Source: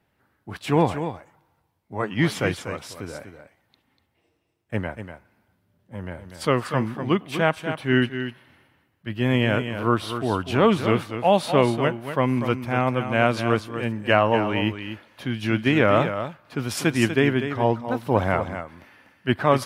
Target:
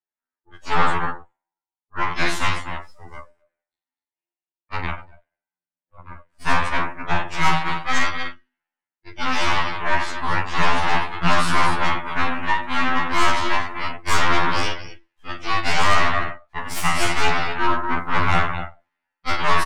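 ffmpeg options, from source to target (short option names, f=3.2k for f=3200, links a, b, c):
-filter_complex "[0:a]highpass=380,bandreject=f=1.1k:w=7.3,aecho=1:1:40|84|132.4|185.6|244.2:0.631|0.398|0.251|0.158|0.1,aeval=exprs='0.631*(cos(1*acos(clip(val(0)/0.631,-1,1)))-cos(1*PI/2))+0.158*(cos(3*acos(clip(val(0)/0.631,-1,1)))-cos(3*PI/2))+0.2*(cos(8*acos(clip(val(0)/0.631,-1,1)))-cos(8*PI/2))':c=same,afftdn=nr=22:nf=-41,asplit=2[a][b];[b]alimiter=limit=-12.5dB:level=0:latency=1:release=32,volume=2dB[c];[a][c]amix=inputs=2:normalize=0,equalizer=f=500:t=o:w=1:g=-5,equalizer=f=1k:t=o:w=1:g=10,equalizer=f=2k:t=o:w=1:g=4,equalizer=f=8k:t=o:w=1:g=6,acrossover=split=480[d][e];[d]acontrast=36[f];[f][e]amix=inputs=2:normalize=0,asoftclip=type=tanh:threshold=-2.5dB,afftfilt=real='re*2*eq(mod(b,4),0)':imag='im*2*eq(mod(b,4),0)':win_size=2048:overlap=0.75,volume=-5.5dB"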